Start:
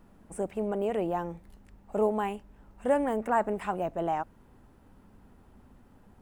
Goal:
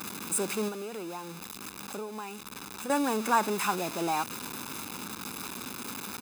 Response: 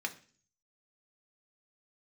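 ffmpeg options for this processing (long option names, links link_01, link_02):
-filter_complex "[0:a]aeval=exprs='val(0)+0.5*0.0188*sgn(val(0))':channel_layout=same,highpass=240,highshelf=frequency=2900:gain=10.5,aecho=1:1:0.8:0.64,asettb=1/sr,asplit=3[link_01][link_02][link_03];[link_01]atrim=end=0.684[link_04];[link_02]atrim=start=0.68:end=2.9,asetpts=PTS-STARTPTS,afade=type=in:duration=0.004:curve=qsin,afade=type=out:start_time=2.216:duration=0.004:curve=qsin,acompressor=threshold=-35dB:ratio=10[link_05];[link_03]atrim=start=2.896[link_06];[link_04][link_05]acrossfade=duration=0.004:curve1=hsin:curve2=qsin[link_07];[link_07][link_06]acrossfade=duration=0.004:curve1=qsin:curve2=hsin"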